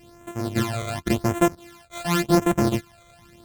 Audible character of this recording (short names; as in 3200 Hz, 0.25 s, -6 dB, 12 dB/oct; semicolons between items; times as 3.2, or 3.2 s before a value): a buzz of ramps at a fixed pitch in blocks of 128 samples; phasing stages 12, 0.9 Hz, lowest notch 280–4700 Hz; AAC